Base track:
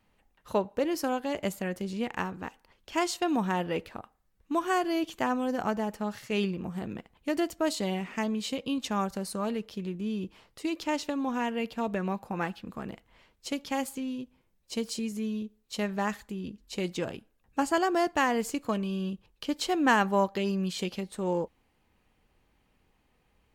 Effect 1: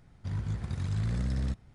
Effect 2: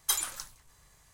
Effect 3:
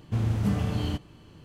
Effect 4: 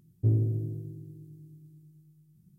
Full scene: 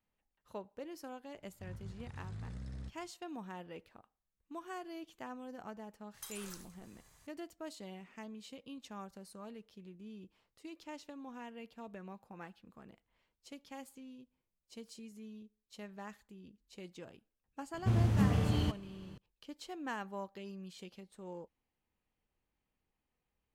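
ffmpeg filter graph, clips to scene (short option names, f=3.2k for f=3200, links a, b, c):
-filter_complex "[0:a]volume=-17.5dB[a];[1:a]aresample=32000,aresample=44100[b];[2:a]acompressor=threshold=-41dB:ratio=6:attack=3.2:release=140:knee=1:detection=peak[c];[b]atrim=end=1.74,asetpts=PTS-STARTPTS,volume=-14.5dB,afade=t=in:d=0.004:c=hsin,afade=t=out:st=1.736:d=0.004:c=hsin,adelay=1360[d];[c]atrim=end=1.13,asetpts=PTS-STARTPTS,volume=-3.5dB,afade=t=in:d=0.004:c=hsin,afade=t=out:st=1.126:d=0.004:c=hsin,adelay=6140[e];[3:a]atrim=end=1.44,asetpts=PTS-STARTPTS,volume=-3dB,afade=t=in:d=0.004:c=hsin,afade=t=out:st=1.436:d=0.004:c=hsin,adelay=17740[f];[a][d][e][f]amix=inputs=4:normalize=0"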